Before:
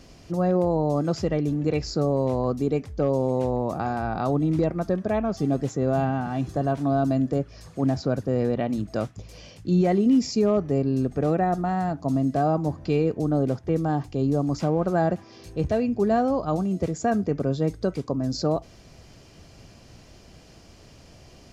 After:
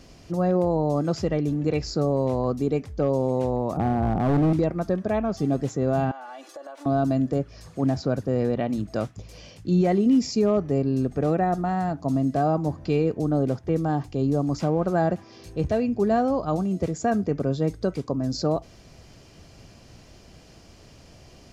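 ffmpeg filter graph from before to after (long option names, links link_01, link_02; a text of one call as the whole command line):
ffmpeg -i in.wav -filter_complex "[0:a]asettb=1/sr,asplit=3[link_01][link_02][link_03];[link_01]atrim=end=3.774[link_04];[link_02]atrim=start=3.77:end=4.53,asetpts=PTS-STARTPTS,afade=type=in:duration=0.004:curve=qsin,afade=type=out:start_time=0.756:duration=0.004:curve=qsin,lowpass=frequency=1300:width=0.5412,lowpass=frequency=1300:width=1.3066,tiltshelf=frequency=920:gain=8.5,asoftclip=type=hard:threshold=-17dB[link_05];[link_03]atrim=start=4.526[link_06];[link_04][link_05]acrossfade=duration=0.004:curve1=hsin:curve2=qsin[link_07];[link_07][link_06]acrossfade=duration=0.004:curve1=qsin:curve2=hsin,asettb=1/sr,asplit=3[link_08][link_09][link_10];[link_08]atrim=end=6.114[link_11];[link_09]atrim=start=6.11:end=6.86,asetpts=PTS-STARTPTS,afade=type=in:duration=0.004:curve=qsin,afade=type=out:start_time=0.746:duration=0.004:curve=qsin,highpass=frequency=490:width=0.5412,highpass=frequency=490:width=1.3066,aecho=1:1:3.5:0.81,atrim=end_sample=33075,acompressor=threshold=-37dB:ratio=5:attack=3.2:release=140:knee=1:detection=peak[link_12];[link_10]atrim=start=6.856[link_13];[link_11][link_12]acrossfade=duration=0.004:curve1=hsin:curve2=qsin[link_14];[link_14][link_13]acrossfade=duration=0.004:curve1=qsin:curve2=hsin" out.wav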